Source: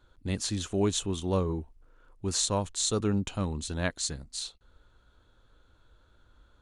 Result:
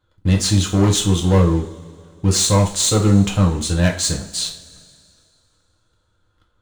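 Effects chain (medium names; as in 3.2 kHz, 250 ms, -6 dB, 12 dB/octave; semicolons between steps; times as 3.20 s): waveshaping leveller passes 3; two-slope reverb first 0.33 s, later 2.4 s, from -21 dB, DRR -0.5 dB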